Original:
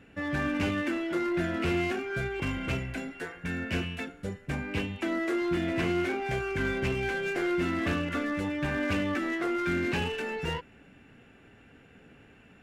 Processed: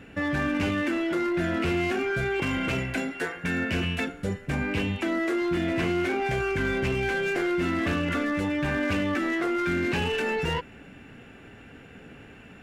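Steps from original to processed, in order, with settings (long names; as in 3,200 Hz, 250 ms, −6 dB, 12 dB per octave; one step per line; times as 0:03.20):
0:02.24–0:03.69: low-shelf EQ 93 Hz −11.5 dB
in parallel at −0.5 dB: compressor whose output falls as the input rises −35 dBFS, ratio −1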